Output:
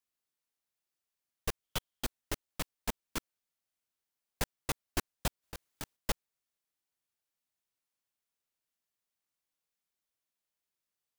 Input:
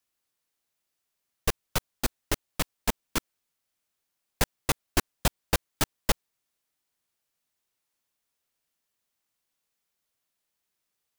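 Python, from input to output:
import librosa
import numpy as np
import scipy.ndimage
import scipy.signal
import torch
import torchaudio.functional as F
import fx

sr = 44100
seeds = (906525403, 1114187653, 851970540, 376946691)

y = fx.peak_eq(x, sr, hz=3200.0, db=9.5, octaves=0.27, at=(1.63, 2.05))
y = fx.over_compress(y, sr, threshold_db=-28.0, ratio=-0.5, at=(5.42, 5.95), fade=0.02)
y = y * librosa.db_to_amplitude(-8.5)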